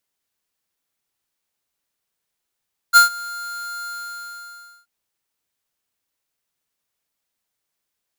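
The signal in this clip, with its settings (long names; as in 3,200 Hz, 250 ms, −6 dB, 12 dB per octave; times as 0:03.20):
note with an ADSR envelope square 1,400 Hz, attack 34 ms, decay 125 ms, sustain −23 dB, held 0.93 s, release 1,000 ms −7.5 dBFS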